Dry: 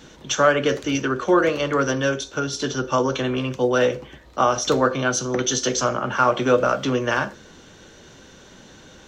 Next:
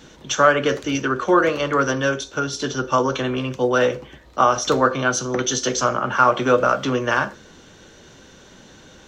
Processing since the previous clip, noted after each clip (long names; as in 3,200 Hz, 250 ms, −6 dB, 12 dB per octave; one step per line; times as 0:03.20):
dynamic equaliser 1,200 Hz, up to +4 dB, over −32 dBFS, Q 1.3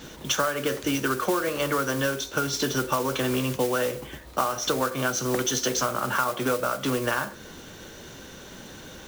downward compressor 12 to 1, threshold −25 dBFS, peak gain reduction 16.5 dB
noise that follows the level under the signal 12 dB
level +3 dB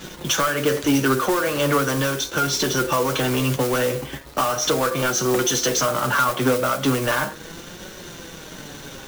leveller curve on the samples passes 3
flanger 0.38 Hz, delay 5.3 ms, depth 2.5 ms, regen +46%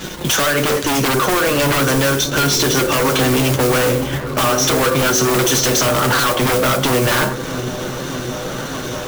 wave folding −19.5 dBFS
echo whose low-pass opens from repeat to repeat 620 ms, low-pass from 200 Hz, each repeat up 1 octave, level −6 dB
level +8.5 dB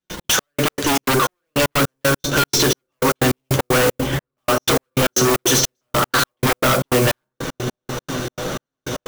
gate pattern ".x.x..x.xx.xx.." 154 BPM −60 dB